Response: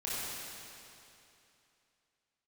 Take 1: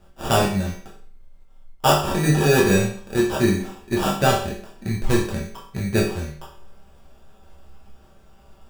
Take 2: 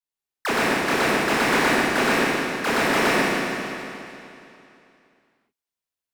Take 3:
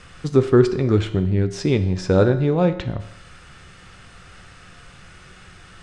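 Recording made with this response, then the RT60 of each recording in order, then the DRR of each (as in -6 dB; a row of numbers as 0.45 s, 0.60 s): 2; 0.50 s, 2.8 s, 0.80 s; -4.5 dB, -9.5 dB, 8.5 dB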